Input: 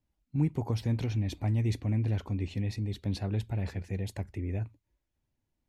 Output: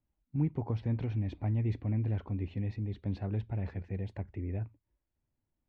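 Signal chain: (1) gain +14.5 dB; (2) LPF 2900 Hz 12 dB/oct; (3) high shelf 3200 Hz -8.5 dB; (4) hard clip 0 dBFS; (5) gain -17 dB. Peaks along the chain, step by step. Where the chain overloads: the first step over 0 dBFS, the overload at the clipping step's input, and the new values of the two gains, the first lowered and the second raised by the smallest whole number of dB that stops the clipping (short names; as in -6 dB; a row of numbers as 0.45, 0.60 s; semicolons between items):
-4.0, -4.0, -4.0, -4.0, -21.0 dBFS; no overload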